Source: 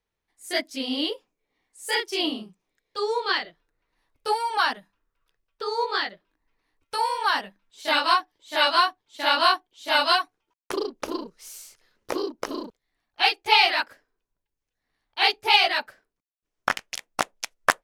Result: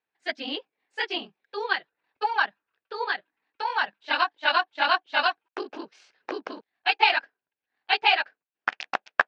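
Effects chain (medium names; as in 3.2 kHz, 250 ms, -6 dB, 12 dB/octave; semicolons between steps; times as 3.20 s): cabinet simulation 210–4600 Hz, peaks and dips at 780 Hz +7 dB, 1.6 kHz +9 dB, 2.6 kHz +6 dB; granular stretch 0.52×, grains 46 ms; trim -4 dB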